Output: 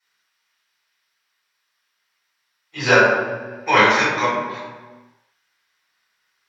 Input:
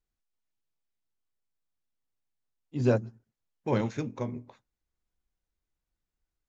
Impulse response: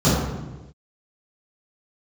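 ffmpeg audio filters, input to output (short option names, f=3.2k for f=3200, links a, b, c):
-filter_complex "[0:a]highpass=f=1.7k:t=q:w=4[a];[1:a]atrim=start_sample=2205,asetrate=35280,aresample=44100[b];[a][b]afir=irnorm=-1:irlink=0,volume=5.5dB"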